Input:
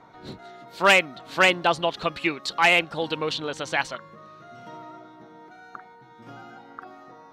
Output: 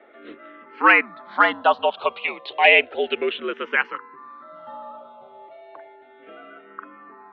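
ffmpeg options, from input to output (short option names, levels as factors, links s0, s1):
-filter_complex "[0:a]highpass=f=390:t=q:w=0.5412,highpass=f=390:t=q:w=1.307,lowpass=f=3200:t=q:w=0.5176,lowpass=f=3200:t=q:w=0.7071,lowpass=f=3200:t=q:w=1.932,afreqshift=-74,asplit=2[s0][s1];[s1]afreqshift=-0.32[s2];[s0][s2]amix=inputs=2:normalize=1,volume=2.11"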